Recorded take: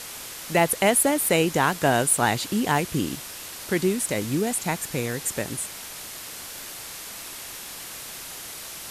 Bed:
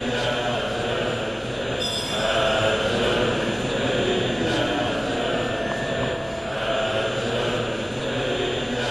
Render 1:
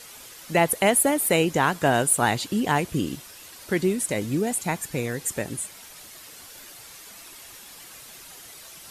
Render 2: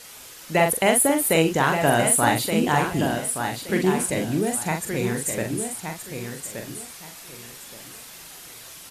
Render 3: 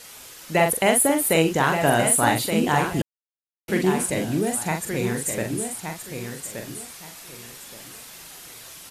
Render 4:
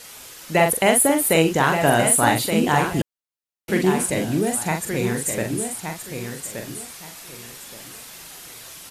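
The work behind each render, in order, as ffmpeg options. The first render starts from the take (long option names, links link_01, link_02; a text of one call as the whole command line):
ffmpeg -i in.wav -af "afftdn=noise_reduction=9:noise_floor=-38" out.wav
ffmpeg -i in.wav -filter_complex "[0:a]asplit=2[link_01][link_02];[link_02]adelay=43,volume=-5dB[link_03];[link_01][link_03]amix=inputs=2:normalize=0,aecho=1:1:1173|2346|3519:0.447|0.103|0.0236" out.wav
ffmpeg -i in.wav -filter_complex "[0:a]asplit=3[link_01][link_02][link_03];[link_01]atrim=end=3.02,asetpts=PTS-STARTPTS,afade=type=out:start_time=3.016:duration=0.004:curve=hsin[link_04];[link_02]atrim=start=3.02:end=3.68,asetpts=PTS-STARTPTS,volume=0[link_05];[link_03]atrim=start=3.68,asetpts=PTS-STARTPTS,afade=type=in:duration=0.004:curve=hsin[link_06];[link_04][link_05][link_06]concat=n=3:v=0:a=1" out.wav
ffmpeg -i in.wav -af "volume=2dB" out.wav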